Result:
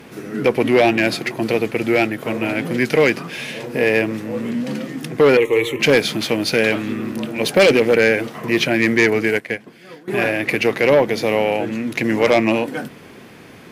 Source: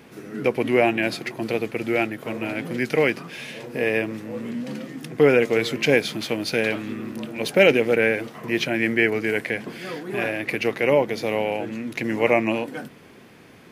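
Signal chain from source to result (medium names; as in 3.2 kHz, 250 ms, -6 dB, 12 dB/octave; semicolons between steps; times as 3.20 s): Chebyshev shaper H 5 -12 dB, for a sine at -3 dBFS; 5.37–5.80 s: static phaser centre 1 kHz, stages 8; 9.28–10.08 s: upward expansion 2.5:1, over -26 dBFS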